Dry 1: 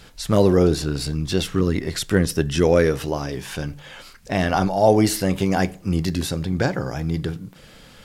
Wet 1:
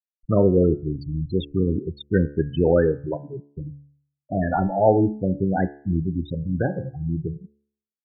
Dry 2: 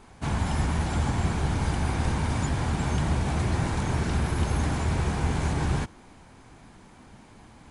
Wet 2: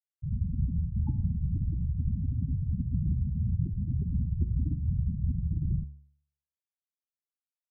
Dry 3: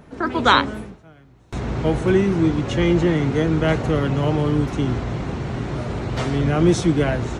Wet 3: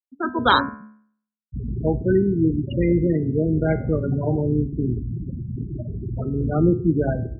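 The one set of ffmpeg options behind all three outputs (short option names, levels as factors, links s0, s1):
-af "afftfilt=real='re*gte(hypot(re,im),0.224)':imag='im*gte(hypot(re,im),0.224)':win_size=1024:overlap=0.75,bandreject=f=71.55:t=h:w=4,bandreject=f=143.1:t=h:w=4,bandreject=f=214.65:t=h:w=4,bandreject=f=286.2:t=h:w=4,bandreject=f=357.75:t=h:w=4,bandreject=f=429.3:t=h:w=4,bandreject=f=500.85:t=h:w=4,bandreject=f=572.4:t=h:w=4,bandreject=f=643.95:t=h:w=4,bandreject=f=715.5:t=h:w=4,bandreject=f=787.05:t=h:w=4,bandreject=f=858.6:t=h:w=4,bandreject=f=930.15:t=h:w=4,bandreject=f=1001.7:t=h:w=4,bandreject=f=1073.25:t=h:w=4,bandreject=f=1144.8:t=h:w=4,bandreject=f=1216.35:t=h:w=4,bandreject=f=1287.9:t=h:w=4,bandreject=f=1359.45:t=h:w=4,bandreject=f=1431:t=h:w=4,bandreject=f=1502.55:t=h:w=4,bandreject=f=1574.1:t=h:w=4,bandreject=f=1645.65:t=h:w=4,bandreject=f=1717.2:t=h:w=4,bandreject=f=1788.75:t=h:w=4,bandreject=f=1860.3:t=h:w=4,bandreject=f=1931.85:t=h:w=4,bandreject=f=2003.4:t=h:w=4,bandreject=f=2074.95:t=h:w=4,bandreject=f=2146.5:t=h:w=4,bandreject=f=2218.05:t=h:w=4,bandreject=f=2289.6:t=h:w=4,bandreject=f=2361.15:t=h:w=4,bandreject=f=2432.7:t=h:w=4,bandreject=f=2504.25:t=h:w=4,bandreject=f=2575.8:t=h:w=4,bandreject=f=2647.35:t=h:w=4,volume=0.891"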